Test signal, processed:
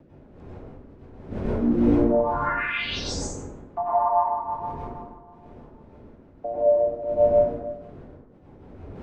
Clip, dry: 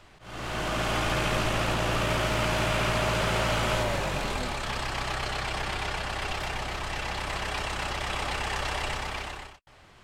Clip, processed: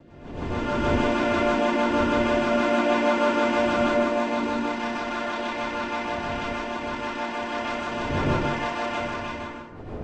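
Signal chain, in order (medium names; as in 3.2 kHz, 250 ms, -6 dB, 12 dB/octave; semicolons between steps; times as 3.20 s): vocoder on a held chord major triad, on A#3; wind noise 370 Hz -42 dBFS; rotary cabinet horn 6.3 Hz; plate-style reverb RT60 1 s, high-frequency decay 0.45×, pre-delay 85 ms, DRR -8 dB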